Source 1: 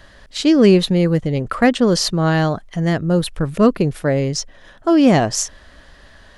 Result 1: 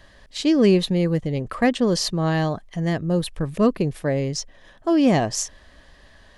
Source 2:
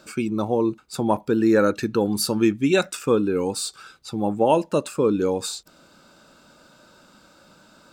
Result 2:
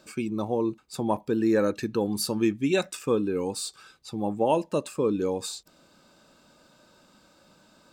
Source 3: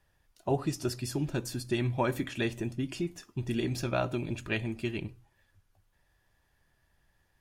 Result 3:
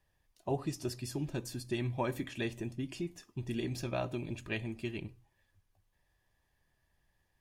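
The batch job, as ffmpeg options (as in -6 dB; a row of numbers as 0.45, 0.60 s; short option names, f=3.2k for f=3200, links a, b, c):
-af "bandreject=f=1.4k:w=7,volume=-5dB"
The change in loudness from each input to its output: -5.0, -5.0, -5.0 LU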